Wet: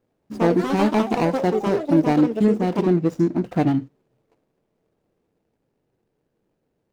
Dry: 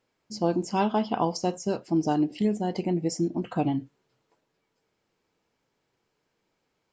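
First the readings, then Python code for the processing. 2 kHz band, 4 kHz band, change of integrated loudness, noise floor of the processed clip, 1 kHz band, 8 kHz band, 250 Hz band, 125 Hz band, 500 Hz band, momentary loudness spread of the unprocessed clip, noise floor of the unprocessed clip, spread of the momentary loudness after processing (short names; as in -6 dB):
+9.5 dB, +1.5 dB, +7.0 dB, -74 dBFS, +4.0 dB, n/a, +7.5 dB, +7.5 dB, +8.0 dB, 4 LU, -78 dBFS, 4 LU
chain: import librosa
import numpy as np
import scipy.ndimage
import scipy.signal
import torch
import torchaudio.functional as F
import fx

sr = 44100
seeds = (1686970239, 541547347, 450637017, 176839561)

y = scipy.ndimage.median_filter(x, 41, mode='constant')
y = fx.echo_pitch(y, sr, ms=87, semitones=5, count=3, db_per_echo=-6.0)
y = y * 10.0 ** (7.5 / 20.0)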